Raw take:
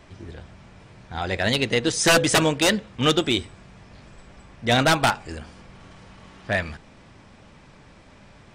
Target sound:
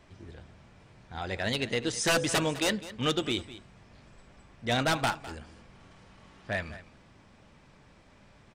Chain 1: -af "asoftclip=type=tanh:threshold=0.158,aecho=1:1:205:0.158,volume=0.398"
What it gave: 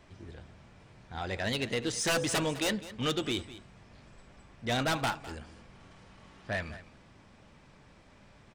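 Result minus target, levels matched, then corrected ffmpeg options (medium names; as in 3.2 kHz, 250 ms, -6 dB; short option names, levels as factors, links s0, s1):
saturation: distortion +15 dB
-af "asoftclip=type=tanh:threshold=0.473,aecho=1:1:205:0.158,volume=0.398"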